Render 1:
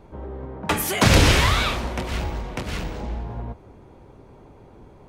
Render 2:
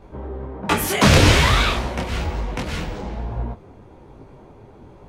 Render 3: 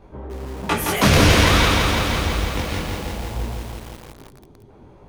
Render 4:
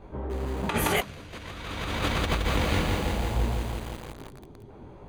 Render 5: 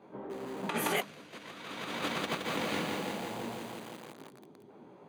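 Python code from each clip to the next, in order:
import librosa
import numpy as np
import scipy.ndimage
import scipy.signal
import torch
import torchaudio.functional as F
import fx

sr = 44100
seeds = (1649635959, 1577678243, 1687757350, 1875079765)

y1 = fx.high_shelf(x, sr, hz=11000.0, db=-5.0)
y1 = fx.detune_double(y1, sr, cents=41)
y1 = y1 * librosa.db_to_amplitude(6.5)
y2 = fx.spec_box(y1, sr, start_s=4.3, length_s=0.4, low_hz=450.0, high_hz=2900.0, gain_db=-7)
y2 = fx.notch(y2, sr, hz=7600.0, q=15.0)
y2 = fx.echo_crushed(y2, sr, ms=168, feedback_pct=80, bits=6, wet_db=-3.5)
y2 = y2 * librosa.db_to_amplitude(-2.0)
y3 = fx.high_shelf(y2, sr, hz=8000.0, db=-6.0)
y3 = fx.notch(y3, sr, hz=5400.0, q=6.0)
y3 = fx.over_compress(y3, sr, threshold_db=-23.0, ratio=-0.5)
y3 = y3 * librosa.db_to_amplitude(-4.0)
y4 = scipy.signal.sosfilt(scipy.signal.butter(4, 170.0, 'highpass', fs=sr, output='sos'), y3)
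y4 = y4 * librosa.db_to_amplitude(-5.5)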